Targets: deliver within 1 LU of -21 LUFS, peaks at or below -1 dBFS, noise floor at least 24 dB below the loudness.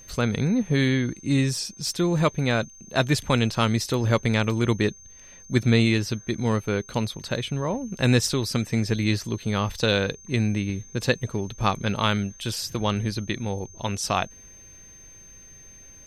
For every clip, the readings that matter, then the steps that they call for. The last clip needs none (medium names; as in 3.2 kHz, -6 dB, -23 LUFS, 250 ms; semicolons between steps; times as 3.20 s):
steady tone 6.3 kHz; tone level -46 dBFS; loudness -25.0 LUFS; peak level -6.0 dBFS; loudness target -21.0 LUFS
-> band-stop 6.3 kHz, Q 30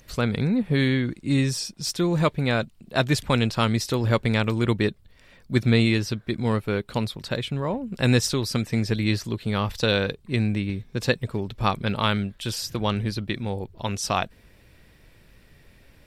steady tone not found; loudness -25.0 LUFS; peak level -6.0 dBFS; loudness target -21.0 LUFS
-> trim +4 dB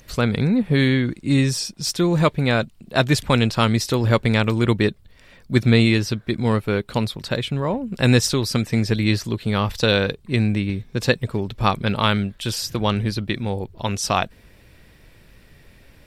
loudness -21.0 LUFS; peak level -2.0 dBFS; noise floor -51 dBFS